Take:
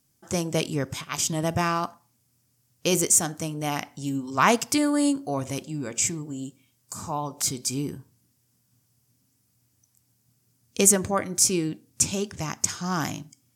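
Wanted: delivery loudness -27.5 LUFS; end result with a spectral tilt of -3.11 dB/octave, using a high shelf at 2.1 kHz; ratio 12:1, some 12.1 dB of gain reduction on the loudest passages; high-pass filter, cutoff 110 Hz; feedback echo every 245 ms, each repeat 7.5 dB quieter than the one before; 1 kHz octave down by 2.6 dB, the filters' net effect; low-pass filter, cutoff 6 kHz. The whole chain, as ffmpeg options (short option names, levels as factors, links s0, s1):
-af "highpass=110,lowpass=6000,equalizer=f=1000:t=o:g=-5,highshelf=f=2100:g=7.5,acompressor=threshold=0.0562:ratio=12,aecho=1:1:245|490|735|980|1225:0.422|0.177|0.0744|0.0312|0.0131,volume=1.41"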